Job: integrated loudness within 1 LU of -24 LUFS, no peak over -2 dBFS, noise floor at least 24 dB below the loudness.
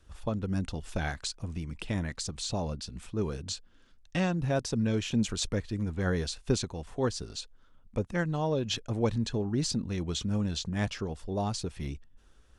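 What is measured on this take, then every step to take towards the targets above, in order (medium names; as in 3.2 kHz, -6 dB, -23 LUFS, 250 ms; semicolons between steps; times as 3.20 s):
loudness -32.5 LUFS; peak level -14.5 dBFS; loudness target -24.0 LUFS
-> trim +8.5 dB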